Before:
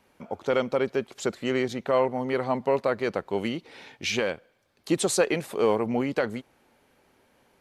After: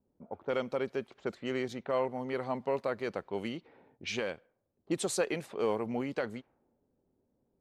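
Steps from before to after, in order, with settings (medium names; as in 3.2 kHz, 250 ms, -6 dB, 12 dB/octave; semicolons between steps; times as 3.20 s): level-controlled noise filter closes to 360 Hz, open at -23.5 dBFS; trim -8 dB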